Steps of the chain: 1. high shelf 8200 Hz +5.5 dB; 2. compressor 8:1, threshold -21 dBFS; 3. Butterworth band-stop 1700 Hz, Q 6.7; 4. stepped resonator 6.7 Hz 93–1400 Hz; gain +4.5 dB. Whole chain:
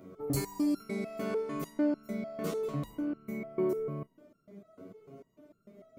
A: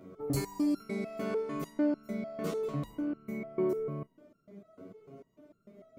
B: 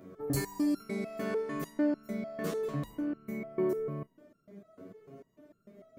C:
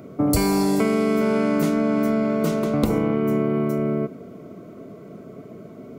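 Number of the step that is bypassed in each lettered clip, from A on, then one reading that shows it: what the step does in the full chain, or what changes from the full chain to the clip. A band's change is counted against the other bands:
1, 8 kHz band -2.5 dB; 3, 2 kHz band +2.5 dB; 4, 1 kHz band +2.5 dB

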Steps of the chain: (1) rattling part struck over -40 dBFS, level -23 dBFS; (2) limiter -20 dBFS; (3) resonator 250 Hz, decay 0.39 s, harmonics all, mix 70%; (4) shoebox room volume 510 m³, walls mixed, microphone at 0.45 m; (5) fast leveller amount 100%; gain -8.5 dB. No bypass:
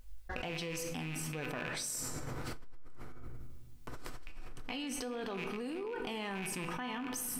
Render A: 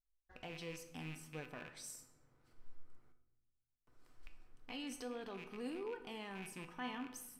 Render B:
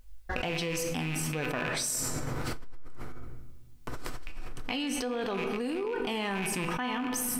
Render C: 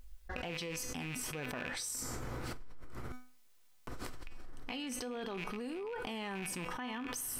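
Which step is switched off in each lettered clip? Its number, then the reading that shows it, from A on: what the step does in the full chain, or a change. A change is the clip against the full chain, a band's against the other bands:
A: 5, momentary loudness spread change +4 LU; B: 2, mean gain reduction 1.5 dB; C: 4, momentary loudness spread change -3 LU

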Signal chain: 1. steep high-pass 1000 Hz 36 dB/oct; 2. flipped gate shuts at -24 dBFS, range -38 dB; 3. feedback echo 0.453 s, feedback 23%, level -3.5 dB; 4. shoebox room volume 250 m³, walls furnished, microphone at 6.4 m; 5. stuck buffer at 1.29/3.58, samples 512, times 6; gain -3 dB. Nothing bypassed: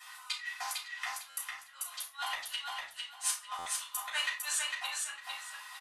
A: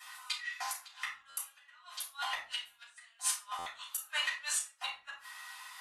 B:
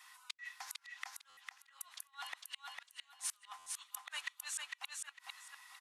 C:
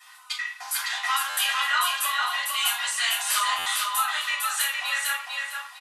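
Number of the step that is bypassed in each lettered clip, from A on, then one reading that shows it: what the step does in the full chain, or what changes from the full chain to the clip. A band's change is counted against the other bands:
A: 3, momentary loudness spread change +5 LU; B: 4, momentary loudness spread change +2 LU; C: 2, crest factor change -5.0 dB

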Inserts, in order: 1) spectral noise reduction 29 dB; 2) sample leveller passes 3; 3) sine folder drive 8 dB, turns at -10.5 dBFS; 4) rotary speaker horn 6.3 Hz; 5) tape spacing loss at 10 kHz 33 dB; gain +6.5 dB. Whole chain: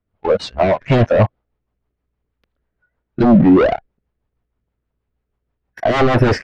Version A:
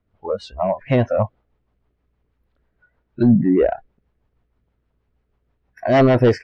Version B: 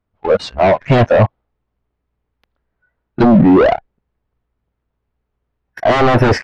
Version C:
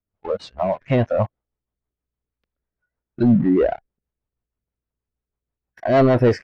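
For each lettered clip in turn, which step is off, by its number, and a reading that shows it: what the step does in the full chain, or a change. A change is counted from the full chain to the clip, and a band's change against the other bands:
2, momentary loudness spread change +4 LU; 4, 1 kHz band +2.0 dB; 3, distortion -2 dB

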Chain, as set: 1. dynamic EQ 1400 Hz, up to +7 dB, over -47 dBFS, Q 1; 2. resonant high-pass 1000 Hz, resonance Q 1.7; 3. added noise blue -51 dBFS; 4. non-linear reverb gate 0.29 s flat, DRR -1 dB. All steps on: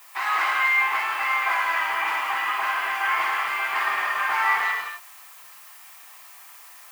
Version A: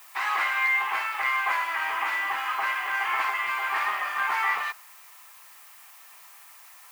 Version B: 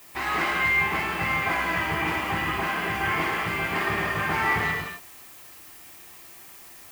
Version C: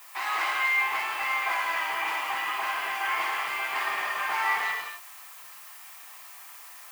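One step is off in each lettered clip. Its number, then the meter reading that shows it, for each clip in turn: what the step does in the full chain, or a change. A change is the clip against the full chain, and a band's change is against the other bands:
4, loudness change -3.0 LU; 2, 500 Hz band +9.0 dB; 1, momentary loudness spread change +14 LU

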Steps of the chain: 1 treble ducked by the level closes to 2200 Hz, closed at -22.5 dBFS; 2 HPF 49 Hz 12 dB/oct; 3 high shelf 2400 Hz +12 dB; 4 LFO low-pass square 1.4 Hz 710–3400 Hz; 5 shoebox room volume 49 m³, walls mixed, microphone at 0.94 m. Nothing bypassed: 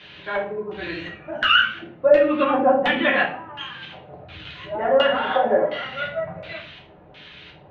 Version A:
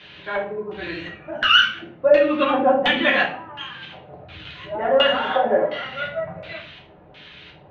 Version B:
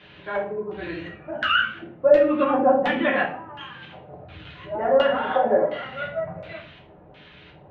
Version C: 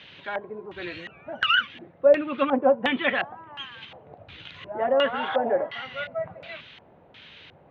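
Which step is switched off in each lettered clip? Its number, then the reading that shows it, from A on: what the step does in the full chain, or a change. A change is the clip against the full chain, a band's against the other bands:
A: 1, 4 kHz band +4.0 dB; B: 3, 4 kHz band -6.5 dB; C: 5, echo-to-direct 4.0 dB to none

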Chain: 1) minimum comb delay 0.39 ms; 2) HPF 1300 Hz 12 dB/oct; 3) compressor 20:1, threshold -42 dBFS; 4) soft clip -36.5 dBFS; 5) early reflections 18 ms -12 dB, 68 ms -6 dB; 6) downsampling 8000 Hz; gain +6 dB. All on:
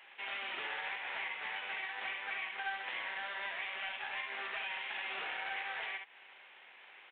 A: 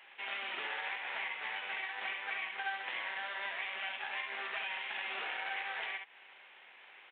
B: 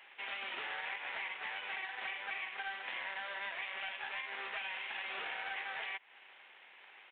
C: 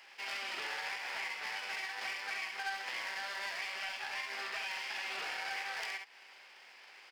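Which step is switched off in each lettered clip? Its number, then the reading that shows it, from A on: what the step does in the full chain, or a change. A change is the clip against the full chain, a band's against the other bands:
4, distortion -22 dB; 5, momentary loudness spread change +2 LU; 6, 4 kHz band +2.0 dB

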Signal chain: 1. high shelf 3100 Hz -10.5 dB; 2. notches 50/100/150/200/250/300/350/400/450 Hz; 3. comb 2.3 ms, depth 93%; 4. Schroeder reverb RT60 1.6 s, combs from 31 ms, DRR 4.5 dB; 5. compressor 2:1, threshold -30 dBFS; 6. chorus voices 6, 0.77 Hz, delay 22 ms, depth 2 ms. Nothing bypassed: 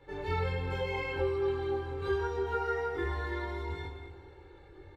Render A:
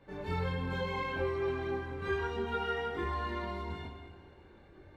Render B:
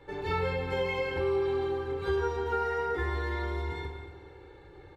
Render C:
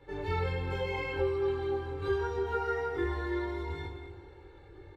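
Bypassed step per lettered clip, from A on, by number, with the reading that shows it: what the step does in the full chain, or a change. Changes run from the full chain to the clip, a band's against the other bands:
3, momentary loudness spread change -5 LU; 6, momentary loudness spread change -3 LU; 2, 250 Hz band +3.0 dB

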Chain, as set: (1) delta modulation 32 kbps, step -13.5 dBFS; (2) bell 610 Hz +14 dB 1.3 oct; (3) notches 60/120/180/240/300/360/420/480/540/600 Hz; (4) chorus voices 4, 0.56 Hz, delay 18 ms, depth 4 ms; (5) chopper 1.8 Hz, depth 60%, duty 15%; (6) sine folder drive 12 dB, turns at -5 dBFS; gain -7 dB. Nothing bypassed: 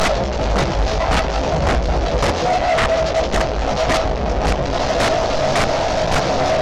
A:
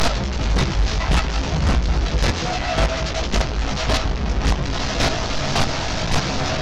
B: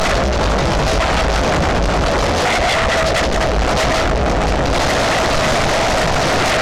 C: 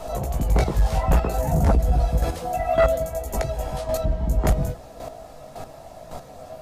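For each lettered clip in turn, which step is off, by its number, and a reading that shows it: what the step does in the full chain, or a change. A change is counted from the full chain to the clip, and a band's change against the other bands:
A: 2, 500 Hz band -9.0 dB; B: 5, 500 Hz band -3.5 dB; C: 1, 4 kHz band -9.5 dB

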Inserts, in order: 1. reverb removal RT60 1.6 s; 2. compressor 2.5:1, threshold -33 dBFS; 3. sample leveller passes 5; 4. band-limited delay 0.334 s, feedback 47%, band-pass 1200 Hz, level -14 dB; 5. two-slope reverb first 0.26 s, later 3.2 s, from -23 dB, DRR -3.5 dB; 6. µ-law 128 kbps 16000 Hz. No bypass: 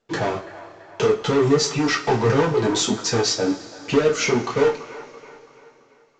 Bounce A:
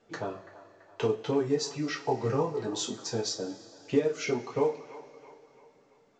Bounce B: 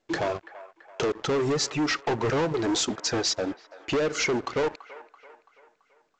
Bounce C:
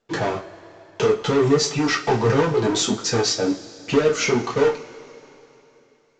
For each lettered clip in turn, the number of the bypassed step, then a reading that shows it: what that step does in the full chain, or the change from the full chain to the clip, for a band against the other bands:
3, crest factor change +3.5 dB; 5, crest factor change -5.5 dB; 4, momentary loudness spread change -6 LU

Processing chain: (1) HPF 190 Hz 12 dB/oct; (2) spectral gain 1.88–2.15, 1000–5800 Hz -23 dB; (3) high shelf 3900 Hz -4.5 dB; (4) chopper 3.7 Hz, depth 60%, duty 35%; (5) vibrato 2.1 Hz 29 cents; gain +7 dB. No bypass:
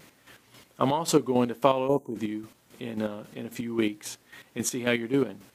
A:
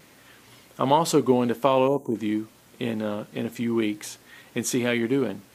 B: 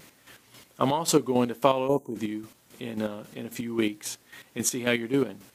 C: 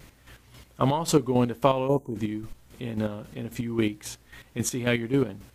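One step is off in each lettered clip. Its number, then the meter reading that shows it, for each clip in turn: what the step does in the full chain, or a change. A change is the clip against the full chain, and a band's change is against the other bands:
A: 4, momentary loudness spread change -3 LU; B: 3, 8 kHz band +3.5 dB; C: 1, 125 Hz band +7.0 dB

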